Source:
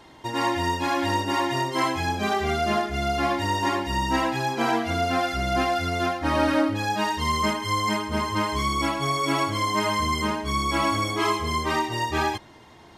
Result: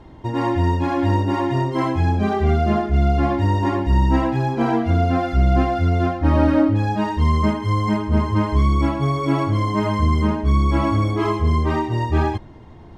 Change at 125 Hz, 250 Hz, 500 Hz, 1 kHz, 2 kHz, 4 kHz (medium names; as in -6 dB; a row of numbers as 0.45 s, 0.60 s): +13.5 dB, +7.5 dB, +4.0 dB, +0.5 dB, -3.5 dB, -7.0 dB